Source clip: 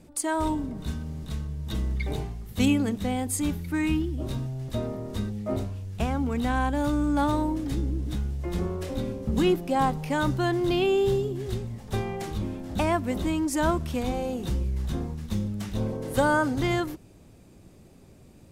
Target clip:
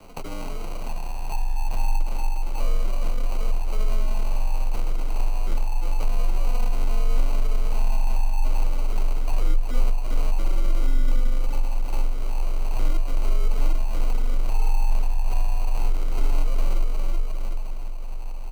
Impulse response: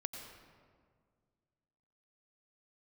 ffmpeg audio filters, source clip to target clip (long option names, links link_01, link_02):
-filter_complex "[0:a]asettb=1/sr,asplit=3[link_01][link_02][link_03];[link_01]atrim=end=1.304[link_04];[link_02]atrim=start=1.3:end=1.98,asetpts=PTS-STARTPTS,afade=type=in:duration=0.004:curve=qsin,afade=type=out:start_time=0.676:duration=0.004:curve=qsin,tiltshelf=frequency=970:gain=9.5[link_05];[link_03]atrim=start=1.976[link_06];[link_04][link_05]acrossfade=duration=0.004:curve1=hsin:curve2=qsin[link_07];[link_07][link_06]acrossfade=duration=0.004:curve1=qsin:curve2=hsin,aecho=1:1:354|708|1062:0.355|0.0816|0.0188,asettb=1/sr,asplit=3[link_08][link_09][link_10];[link_08]atrim=end=12.074[link_11];[link_09]atrim=start=12.07:end=12.73,asetpts=PTS-STARTPTS,afade=type=in:duration=0.004:curve=qsin,afade=type=out:start_time=0.656:duration=0.004:curve=qsin,asoftclip=type=hard:threshold=-34.5dB[link_12];[link_10]atrim=start=12.726[link_13];[link_11][link_12]acrossfade=duration=0.004:curve1=hsin:curve2=qsin[link_14];[link_14][link_13]acrossfade=duration=0.004:curve1=qsin:curve2=hsin,afreqshift=350,acompressor=threshold=-41dB:ratio=4,acrusher=samples=25:mix=1:aa=0.000001,aeval=exprs='abs(val(0))':channel_layout=same,asubboost=boost=7:cutoff=63,afreqshift=-23,volume=8.5dB"